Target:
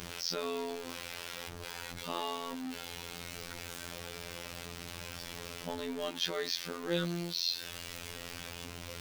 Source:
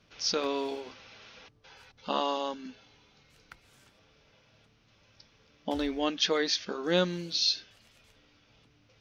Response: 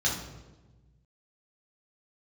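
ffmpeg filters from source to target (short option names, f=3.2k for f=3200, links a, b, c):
-af "aeval=exprs='val(0)+0.5*0.0335*sgn(val(0))':c=same,afftfilt=real='hypot(re,im)*cos(PI*b)':imag='0':win_size=2048:overlap=0.75,volume=-5.5dB"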